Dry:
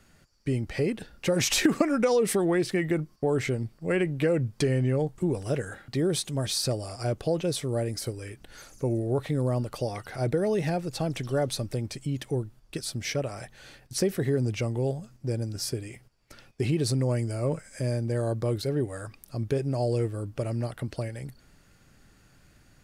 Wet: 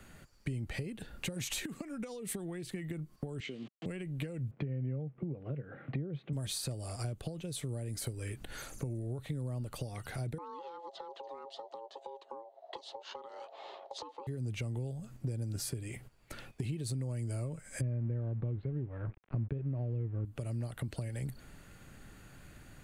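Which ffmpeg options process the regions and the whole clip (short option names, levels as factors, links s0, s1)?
-filter_complex "[0:a]asettb=1/sr,asplit=3[s0][s1][s2];[s0]atrim=end=3.404[s3];[s1]atrim=start=3.4:end=3.86,asetpts=PTS-STARTPTS,afade=t=in:d=0.004:c=qsin,afade=t=out:st=0.456:d=0.004:c=qsin,aeval=exprs='val(0)*gte(abs(val(0)),0.00891)':c=same,highpass=f=210:w=0.5412,highpass=f=210:w=1.3066,equalizer=f=600:t=q:w=4:g=-5,equalizer=f=890:t=q:w=4:g=-8,equalizer=f=1500:t=q:w=4:g=-6,equalizer=f=3000:t=q:w=4:g=8,lowpass=f=5600:w=0.5412,lowpass=f=5600:w=1.3066[s4];[s2]atrim=start=3.856[s5];[s3][s4]acrossfade=d=0.004:c1=hsin:c2=qsin[s6];[s6][s5]acrossfade=d=0.004:c1=qsin:c2=hsin,asettb=1/sr,asplit=3[s7][s8][s9];[s7]atrim=end=4.514[s10];[s8]atrim=start=4.51:end=6.33,asetpts=PTS-STARTPTS,afade=t=in:d=0.004:c=qsin,afade=t=out:st=1.816:d=0.004:c=qsin,acrusher=bits=8:mix=0:aa=0.5,highpass=140,equalizer=f=140:t=q:w=4:g=10,equalizer=f=270:t=q:w=4:g=4,equalizer=f=510:t=q:w=4:g=5,equalizer=f=940:t=q:w=4:g=-6,equalizer=f=1700:t=q:w=4:g=-5,lowpass=f=2200:w=0.5412,lowpass=f=2200:w=1.3066[s11];[s9]atrim=start=6.326[s12];[s10][s11]acrossfade=d=0.004:c1=hsin:c2=qsin[s13];[s13][s12]acrossfade=d=0.004:c1=qsin:c2=hsin,asettb=1/sr,asplit=3[s14][s15][s16];[s14]atrim=end=10.384[s17];[s15]atrim=start=10.38:end=14.27,asetpts=PTS-STARTPTS,afade=t=in:d=0.004:c=qsin,afade=t=out:st=3.886:d=0.004:c=qsin,aeval=exprs='val(0)*sin(2*PI*680*n/s)':c=same,highpass=f=350:w=0.5412,highpass=f=350:w=1.3066,equalizer=f=400:t=q:w=4:g=9,equalizer=f=570:t=q:w=4:g=8,equalizer=f=880:t=q:w=4:g=9,equalizer=f=1500:t=q:w=4:g=-4,equalizer=f=2400:t=q:w=4:g=-9,lowpass=f=4600:w=0.5412,lowpass=f=4600:w=1.3066[s18];[s16]atrim=start=14.266[s19];[s17][s18]acrossfade=d=0.004:c1=hsin:c2=qsin[s20];[s20][s19]acrossfade=d=0.004:c1=qsin:c2=hsin,asettb=1/sr,asplit=3[s21][s22][s23];[s21]atrim=end=17.814[s24];[s22]atrim=start=17.81:end=20.25,asetpts=PTS-STARTPTS,afade=t=in:d=0.004:c=qsin,afade=t=out:st=2.436:d=0.004:c=qsin,lowshelf=f=440:g=11,aeval=exprs='sgn(val(0))*max(abs(val(0))-0.00841,0)':c=same,lowpass=f=2500:w=0.5412,lowpass=f=2500:w=1.3066[s25];[s23]atrim=start=20.246[s26];[s24][s25]acrossfade=d=0.004:c1=hsin:c2=qsin[s27];[s27][s26]acrossfade=d=0.004:c1=qsin:c2=hsin,acompressor=threshold=0.0141:ratio=6,equalizer=f=5300:w=3:g=-10,acrossover=split=210|3000[s28][s29][s30];[s29]acompressor=threshold=0.00355:ratio=6[s31];[s28][s31][s30]amix=inputs=3:normalize=0,volume=1.68"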